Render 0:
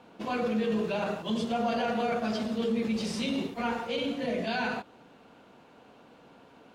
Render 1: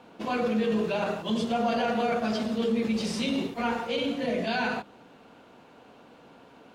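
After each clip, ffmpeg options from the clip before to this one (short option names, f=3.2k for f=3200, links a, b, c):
-af "bandreject=f=50:t=h:w=6,bandreject=f=100:t=h:w=6,bandreject=f=150:t=h:w=6,bandreject=f=200:t=h:w=6,volume=2.5dB"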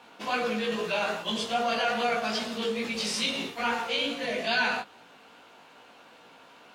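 -af "tiltshelf=f=630:g=-8,flanger=delay=16.5:depth=3.2:speed=2.4,volume=1.5dB"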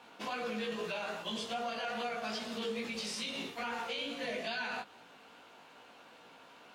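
-af "alimiter=level_in=1dB:limit=-24dB:level=0:latency=1:release=240,volume=-1dB,volume=-3.5dB"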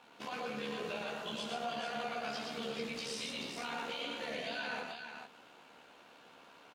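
-filter_complex "[0:a]tremolo=f=73:d=0.571,asplit=2[a][b];[b]aecho=0:1:118|438:0.668|0.501[c];[a][c]amix=inputs=2:normalize=0,volume=-1.5dB"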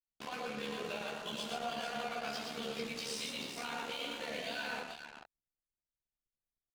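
-af "highshelf=f=6.1k:g=5,aeval=exprs='sgn(val(0))*max(abs(val(0))-0.00251,0)':c=same,anlmdn=0.00158,volume=1dB"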